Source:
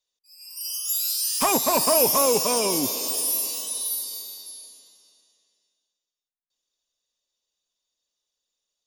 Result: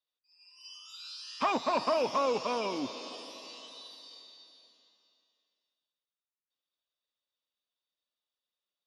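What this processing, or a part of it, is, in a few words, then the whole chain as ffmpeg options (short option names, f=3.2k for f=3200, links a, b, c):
guitar cabinet: -af "highpass=77,equalizer=f=110:t=q:w=4:g=-6,equalizer=f=160:t=q:w=4:g=-9,equalizer=f=400:t=q:w=4:g=-5,equalizer=f=1.3k:t=q:w=4:g=5,lowpass=f=4.1k:w=0.5412,lowpass=f=4.1k:w=1.3066,volume=-6.5dB"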